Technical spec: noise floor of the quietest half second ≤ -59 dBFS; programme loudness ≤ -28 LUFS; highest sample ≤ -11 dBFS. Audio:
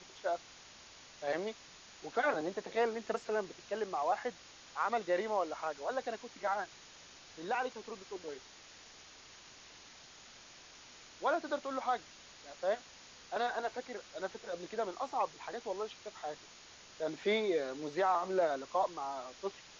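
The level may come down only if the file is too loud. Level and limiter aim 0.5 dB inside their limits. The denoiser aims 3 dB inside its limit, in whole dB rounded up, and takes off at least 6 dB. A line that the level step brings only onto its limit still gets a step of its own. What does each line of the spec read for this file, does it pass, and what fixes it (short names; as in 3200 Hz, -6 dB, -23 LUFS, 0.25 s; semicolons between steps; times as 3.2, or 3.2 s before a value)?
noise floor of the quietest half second -56 dBFS: fail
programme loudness -37.0 LUFS: OK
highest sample -21.0 dBFS: OK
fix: denoiser 6 dB, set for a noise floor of -56 dBFS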